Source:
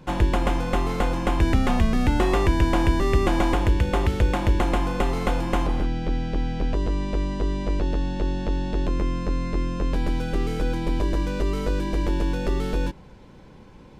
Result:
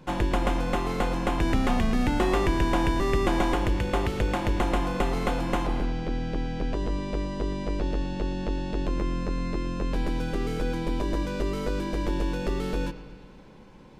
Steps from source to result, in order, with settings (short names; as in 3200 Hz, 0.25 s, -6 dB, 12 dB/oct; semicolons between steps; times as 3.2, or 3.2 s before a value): bell 71 Hz -9 dB 0.98 oct; analogue delay 0.114 s, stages 4096, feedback 66%, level -15 dB; gain -2 dB